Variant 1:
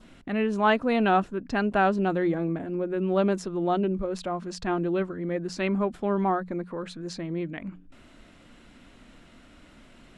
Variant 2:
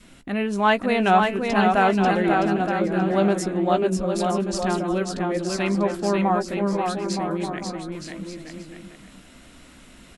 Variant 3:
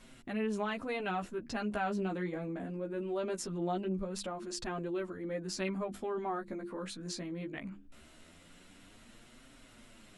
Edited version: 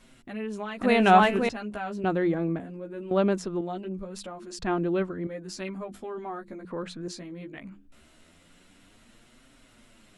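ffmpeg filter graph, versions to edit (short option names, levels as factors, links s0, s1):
-filter_complex "[0:a]asplit=4[s0][s1][s2][s3];[2:a]asplit=6[s4][s5][s6][s7][s8][s9];[s4]atrim=end=0.812[s10];[1:a]atrim=start=0.808:end=1.492[s11];[s5]atrim=start=1.488:end=2.042[s12];[s0]atrim=start=2.038:end=2.602[s13];[s6]atrim=start=2.598:end=3.112[s14];[s1]atrim=start=3.108:end=3.612[s15];[s7]atrim=start=3.608:end=4.592[s16];[s2]atrim=start=4.588:end=5.272[s17];[s8]atrim=start=5.268:end=6.652[s18];[s3]atrim=start=6.648:end=7.082[s19];[s9]atrim=start=7.078[s20];[s10][s11]acrossfade=d=0.004:c1=hsin:c2=hsin[s21];[s21][s12]acrossfade=d=0.004:c1=hsin:c2=hsin[s22];[s22][s13]acrossfade=d=0.004:c1=hsin:c2=hsin[s23];[s23][s14]acrossfade=d=0.004:c1=hsin:c2=hsin[s24];[s24][s15]acrossfade=d=0.004:c1=hsin:c2=hsin[s25];[s25][s16]acrossfade=d=0.004:c1=hsin:c2=hsin[s26];[s26][s17]acrossfade=d=0.004:c1=hsin:c2=hsin[s27];[s27][s18]acrossfade=d=0.004:c1=hsin:c2=hsin[s28];[s28][s19]acrossfade=d=0.004:c1=hsin:c2=hsin[s29];[s29][s20]acrossfade=d=0.004:c1=hsin:c2=hsin"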